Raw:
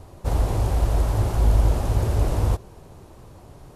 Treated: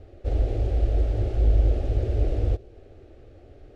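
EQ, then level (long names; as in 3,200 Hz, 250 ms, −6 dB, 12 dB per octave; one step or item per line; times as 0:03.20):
low-pass filter 2,600 Hz 12 dB per octave
dynamic equaliser 1,500 Hz, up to −5 dB, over −50 dBFS, Q 0.97
phaser with its sweep stopped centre 410 Hz, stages 4
0.0 dB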